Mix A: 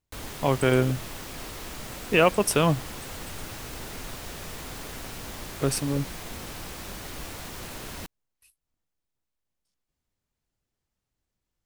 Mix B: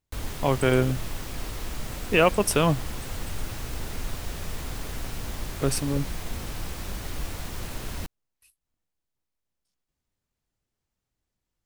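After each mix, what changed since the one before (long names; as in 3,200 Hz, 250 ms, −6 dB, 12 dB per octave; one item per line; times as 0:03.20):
background: add low-shelf EQ 110 Hz +11.5 dB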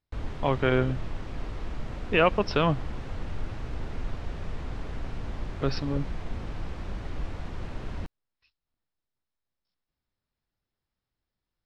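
speech: add Chebyshev low-pass with heavy ripple 5,400 Hz, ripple 3 dB
background: add head-to-tape spacing loss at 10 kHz 28 dB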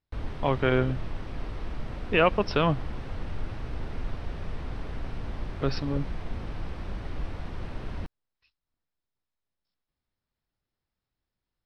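master: add parametric band 7,000 Hz −8.5 dB 0.28 octaves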